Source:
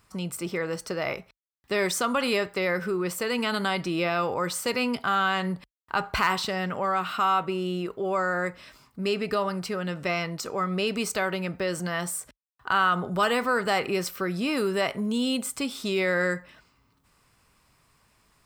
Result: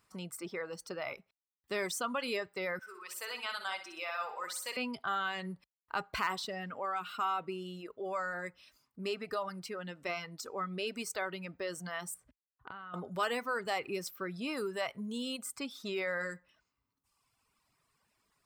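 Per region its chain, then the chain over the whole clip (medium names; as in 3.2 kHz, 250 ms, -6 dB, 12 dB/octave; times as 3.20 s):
2.79–4.77 s: high-pass 780 Hz + feedback delay 62 ms, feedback 57%, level -4.5 dB
12.14–12.94 s: tone controls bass +10 dB, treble -12 dB + compression 16:1, threshold -32 dBFS
whole clip: reverb removal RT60 1.5 s; bass shelf 110 Hz -9.5 dB; trim -8.5 dB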